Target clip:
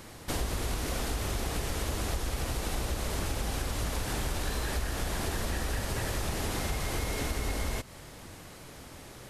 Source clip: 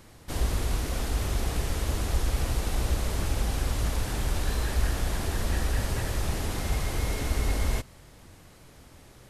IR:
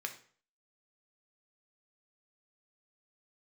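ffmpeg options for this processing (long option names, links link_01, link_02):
-af "lowshelf=frequency=130:gain=-6.5,acompressor=threshold=-35dB:ratio=6,volume=6.5dB"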